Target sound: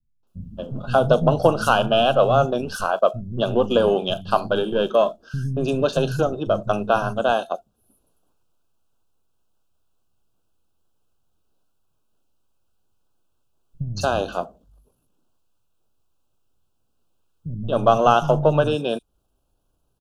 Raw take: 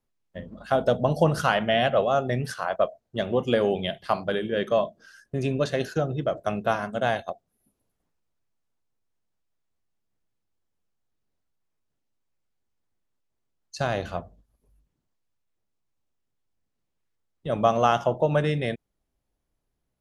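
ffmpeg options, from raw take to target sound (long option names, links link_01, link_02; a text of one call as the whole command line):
ffmpeg -i in.wav -filter_complex "[0:a]aeval=exprs='if(lt(val(0),0),0.708*val(0),val(0))':channel_layout=same,asplit=2[link_01][link_02];[link_02]acompressor=threshold=-35dB:ratio=6,volume=-2dB[link_03];[link_01][link_03]amix=inputs=2:normalize=0,asuperstop=centerf=2000:order=8:qfactor=2.1,acrossover=split=190|5500[link_04][link_05][link_06];[link_05]adelay=230[link_07];[link_06]adelay=270[link_08];[link_04][link_07][link_08]amix=inputs=3:normalize=0,volume=5.5dB" out.wav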